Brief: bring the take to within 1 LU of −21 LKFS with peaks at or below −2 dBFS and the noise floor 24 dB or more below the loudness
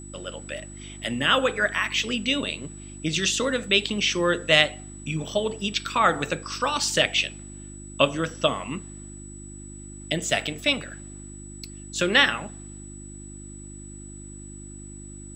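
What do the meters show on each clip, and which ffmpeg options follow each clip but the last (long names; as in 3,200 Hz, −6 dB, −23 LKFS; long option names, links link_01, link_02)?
mains hum 50 Hz; hum harmonics up to 350 Hz; level of the hum −39 dBFS; interfering tone 7,900 Hz; level of the tone −44 dBFS; integrated loudness −23.5 LKFS; sample peak −1.5 dBFS; target loudness −21.0 LKFS
→ -af "bandreject=frequency=50:width_type=h:width=4,bandreject=frequency=100:width_type=h:width=4,bandreject=frequency=150:width_type=h:width=4,bandreject=frequency=200:width_type=h:width=4,bandreject=frequency=250:width_type=h:width=4,bandreject=frequency=300:width_type=h:width=4,bandreject=frequency=350:width_type=h:width=4"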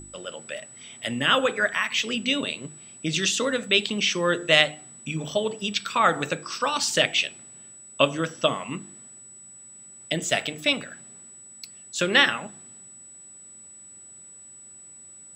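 mains hum none found; interfering tone 7,900 Hz; level of the tone −44 dBFS
→ -af "bandreject=frequency=7900:width=30"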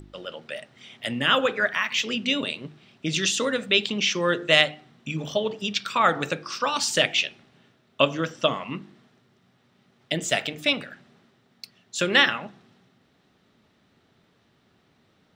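interfering tone none found; integrated loudness −23.5 LKFS; sample peak −2.0 dBFS; target loudness −21.0 LKFS
→ -af "volume=2.5dB,alimiter=limit=-2dB:level=0:latency=1"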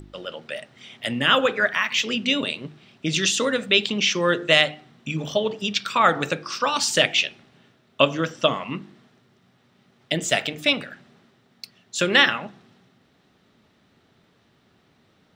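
integrated loudness −21.5 LKFS; sample peak −2.0 dBFS; background noise floor −62 dBFS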